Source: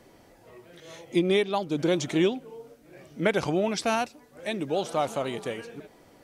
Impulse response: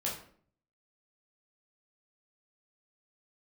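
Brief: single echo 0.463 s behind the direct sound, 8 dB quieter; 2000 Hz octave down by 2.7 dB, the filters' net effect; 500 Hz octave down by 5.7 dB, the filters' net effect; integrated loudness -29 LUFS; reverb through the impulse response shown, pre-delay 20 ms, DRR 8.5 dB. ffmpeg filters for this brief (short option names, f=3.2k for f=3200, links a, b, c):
-filter_complex "[0:a]equalizer=f=500:t=o:g=-8,equalizer=f=2k:t=o:g=-3,aecho=1:1:463:0.398,asplit=2[a][b];[1:a]atrim=start_sample=2205,adelay=20[c];[b][c]afir=irnorm=-1:irlink=0,volume=-12.5dB[d];[a][d]amix=inputs=2:normalize=0,volume=1.5dB"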